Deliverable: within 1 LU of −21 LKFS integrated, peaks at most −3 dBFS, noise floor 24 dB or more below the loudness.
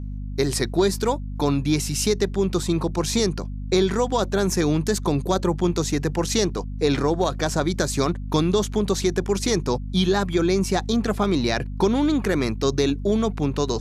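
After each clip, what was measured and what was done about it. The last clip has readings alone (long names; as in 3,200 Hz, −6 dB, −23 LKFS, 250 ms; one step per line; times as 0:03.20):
mains hum 50 Hz; hum harmonics up to 250 Hz; level of the hum −28 dBFS; integrated loudness −22.5 LKFS; sample peak −7.0 dBFS; target loudness −21.0 LKFS
→ mains-hum notches 50/100/150/200/250 Hz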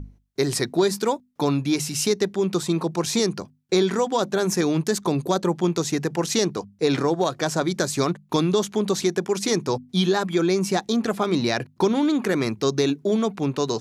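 mains hum none found; integrated loudness −23.0 LKFS; sample peak −7.0 dBFS; target loudness −21.0 LKFS
→ level +2 dB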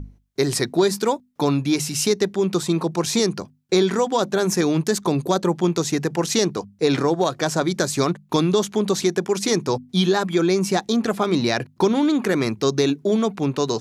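integrated loudness −21.0 LKFS; sample peak −5.0 dBFS; background noise floor −57 dBFS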